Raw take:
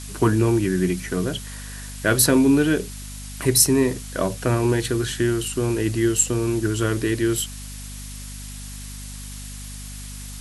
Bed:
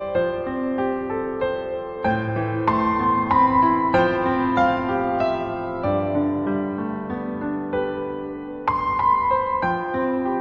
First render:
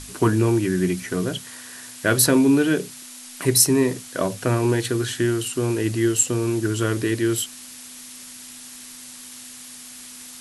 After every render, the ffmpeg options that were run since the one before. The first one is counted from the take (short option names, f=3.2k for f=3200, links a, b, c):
-af "bandreject=f=50:t=h:w=6,bandreject=f=100:t=h:w=6,bandreject=f=150:t=h:w=6,bandreject=f=200:t=h:w=6"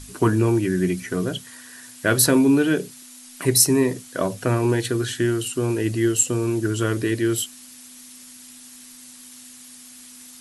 -af "afftdn=nr=6:nf=-41"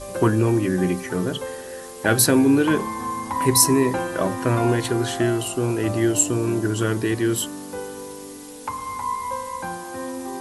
-filter_complex "[1:a]volume=-8.5dB[a];[0:a][a]amix=inputs=2:normalize=0"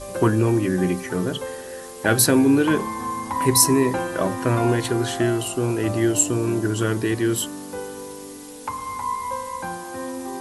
-af anull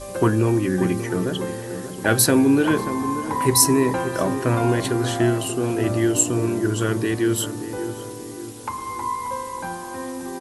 -filter_complex "[0:a]asplit=2[a][b];[b]adelay=584,lowpass=f=1.2k:p=1,volume=-10dB,asplit=2[c][d];[d]adelay=584,lowpass=f=1.2k:p=1,volume=0.5,asplit=2[e][f];[f]adelay=584,lowpass=f=1.2k:p=1,volume=0.5,asplit=2[g][h];[h]adelay=584,lowpass=f=1.2k:p=1,volume=0.5,asplit=2[i][j];[j]adelay=584,lowpass=f=1.2k:p=1,volume=0.5[k];[a][c][e][g][i][k]amix=inputs=6:normalize=0"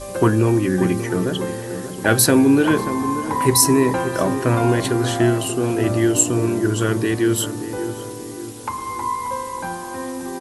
-af "volume=2.5dB,alimiter=limit=-2dB:level=0:latency=1"